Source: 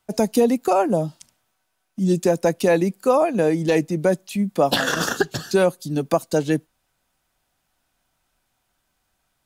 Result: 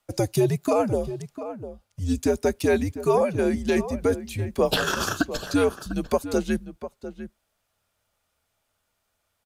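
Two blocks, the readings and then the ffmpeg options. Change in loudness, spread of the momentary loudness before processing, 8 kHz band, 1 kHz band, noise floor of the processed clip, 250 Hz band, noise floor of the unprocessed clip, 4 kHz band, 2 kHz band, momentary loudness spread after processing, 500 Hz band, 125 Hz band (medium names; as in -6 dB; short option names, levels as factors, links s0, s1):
-4.0 dB, 6 LU, -3.0 dB, -5.5 dB, -76 dBFS, -4.0 dB, -73 dBFS, -3.0 dB, -3.5 dB, 15 LU, -4.0 dB, -2.0 dB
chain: -filter_complex "[0:a]afreqshift=-100,equalizer=f=62:w=0.68:g=-6,asplit=2[s0][s1];[s1]adelay=699.7,volume=0.251,highshelf=f=4000:g=-15.7[s2];[s0][s2]amix=inputs=2:normalize=0,volume=0.708"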